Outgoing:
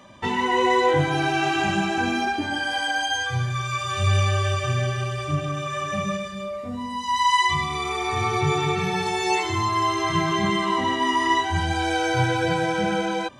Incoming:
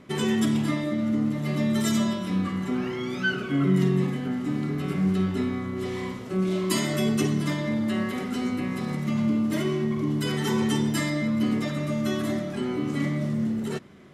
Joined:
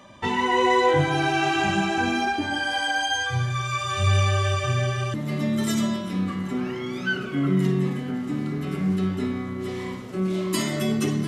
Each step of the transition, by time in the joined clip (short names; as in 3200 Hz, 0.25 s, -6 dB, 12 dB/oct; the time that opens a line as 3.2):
outgoing
5.14 switch to incoming from 1.31 s